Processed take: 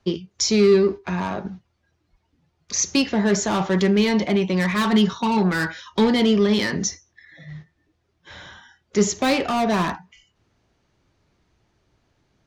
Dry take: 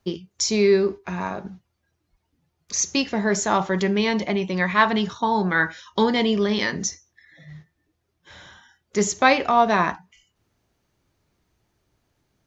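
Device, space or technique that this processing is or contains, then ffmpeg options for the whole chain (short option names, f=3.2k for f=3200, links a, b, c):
one-band saturation: -filter_complex "[0:a]lowpass=5.9k,asettb=1/sr,asplit=3[a][b][c];[a]atrim=end=4.754[d];[b]atrim=start=4.75:end=5.38,asetpts=PTS-STARTPTS,afade=t=in:d=0.004:c=qsin,afade=t=out:st=0.626:d=0.004:c=qsin,aecho=1:1:5.3:0.44,atrim=end_sample=27783[e];[c]atrim=start=5.376[f];[d][e]acrossfade=d=0.004:c1=hsin:c2=qsin[g];[g][f]acrossfade=d=0.004:c1=qsin:c2=hsin,acrossover=split=400|3900[h][i][j];[i]asoftclip=type=tanh:threshold=-27dB[k];[h][k][j]amix=inputs=3:normalize=0,volume=4.5dB"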